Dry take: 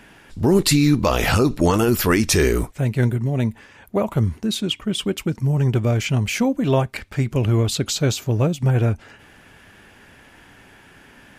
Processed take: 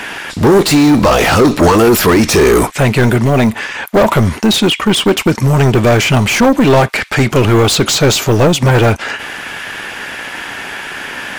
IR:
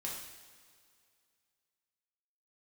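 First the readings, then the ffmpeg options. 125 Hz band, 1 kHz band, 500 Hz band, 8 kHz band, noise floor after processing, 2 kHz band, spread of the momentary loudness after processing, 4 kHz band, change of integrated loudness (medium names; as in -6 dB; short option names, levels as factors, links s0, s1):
+6.5 dB, +13.5 dB, +11.5 dB, +9.0 dB, -27 dBFS, +13.0 dB, 14 LU, +11.0 dB, +9.5 dB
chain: -filter_complex "[0:a]asplit=2[s0][s1];[s1]highpass=f=720:p=1,volume=20,asoftclip=type=tanh:threshold=0.596[s2];[s0][s2]amix=inputs=2:normalize=0,lowpass=f=6800:p=1,volume=0.501,acrossover=split=1000[s3][s4];[s3]acrusher=bits=5:mix=0:aa=0.5[s5];[s4]alimiter=limit=0.224:level=0:latency=1:release=76[s6];[s5][s6]amix=inputs=2:normalize=0,acontrast=59"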